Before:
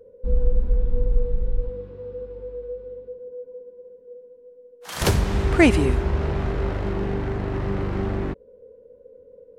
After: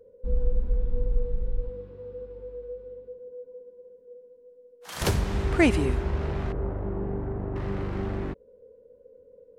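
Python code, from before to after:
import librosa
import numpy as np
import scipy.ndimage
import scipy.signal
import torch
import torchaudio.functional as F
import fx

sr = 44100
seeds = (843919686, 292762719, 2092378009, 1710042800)

y = fx.lowpass(x, sr, hz=1000.0, slope=12, at=(6.52, 7.56))
y = F.gain(torch.from_numpy(y), -5.0).numpy()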